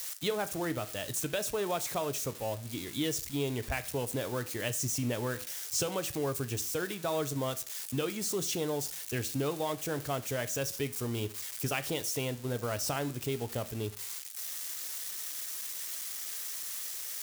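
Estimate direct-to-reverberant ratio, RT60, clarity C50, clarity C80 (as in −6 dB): 11.5 dB, 0.45 s, 18.0 dB, 22.0 dB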